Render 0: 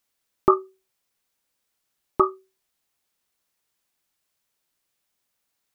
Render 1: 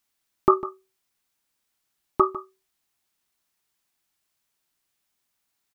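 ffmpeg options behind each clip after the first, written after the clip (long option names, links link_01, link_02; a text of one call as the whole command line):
ffmpeg -i in.wav -af "equalizer=frequency=510:width_type=o:width=0.29:gain=-8,aecho=1:1:151:0.178" out.wav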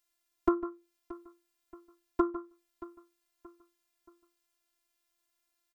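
ffmpeg -i in.wav -filter_complex "[0:a]acrossover=split=540|2000[link_01][link_02][link_03];[link_01]acompressor=threshold=-24dB:ratio=4[link_04];[link_02]acompressor=threshold=-22dB:ratio=4[link_05];[link_03]acompressor=threshold=-56dB:ratio=4[link_06];[link_04][link_05][link_06]amix=inputs=3:normalize=0,afftfilt=real='hypot(re,im)*cos(PI*b)':imag='0':win_size=512:overlap=0.75,aecho=1:1:627|1254|1881:0.126|0.0516|0.0212" out.wav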